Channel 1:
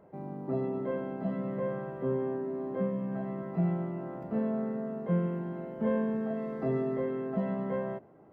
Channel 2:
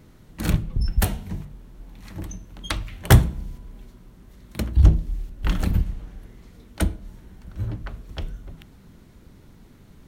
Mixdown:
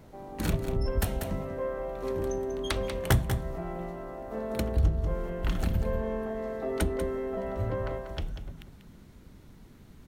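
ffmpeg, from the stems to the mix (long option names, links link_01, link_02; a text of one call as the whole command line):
ffmpeg -i stem1.wav -i stem2.wav -filter_complex "[0:a]highpass=400,volume=1.5dB,asplit=2[link_01][link_02];[link_02]volume=-5dB[link_03];[1:a]volume=-3dB,asplit=2[link_04][link_05];[link_05]volume=-10dB[link_06];[link_03][link_06]amix=inputs=2:normalize=0,aecho=0:1:191:1[link_07];[link_01][link_04][link_07]amix=inputs=3:normalize=0,acompressor=threshold=-26dB:ratio=2" out.wav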